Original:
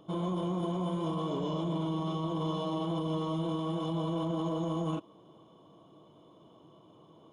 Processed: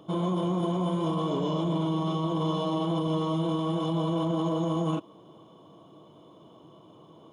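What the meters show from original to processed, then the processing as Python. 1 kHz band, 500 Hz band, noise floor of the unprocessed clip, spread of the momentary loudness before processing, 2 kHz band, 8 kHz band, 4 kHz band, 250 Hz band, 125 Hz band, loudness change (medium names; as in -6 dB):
+5.0 dB, +5.0 dB, -59 dBFS, 1 LU, +5.0 dB, no reading, +5.0 dB, +5.0 dB, +5.0 dB, +5.0 dB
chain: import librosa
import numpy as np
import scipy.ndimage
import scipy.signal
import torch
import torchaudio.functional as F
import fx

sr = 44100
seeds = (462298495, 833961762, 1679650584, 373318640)

y = scipy.signal.sosfilt(scipy.signal.butter(2, 63.0, 'highpass', fs=sr, output='sos'), x)
y = y * librosa.db_to_amplitude(5.0)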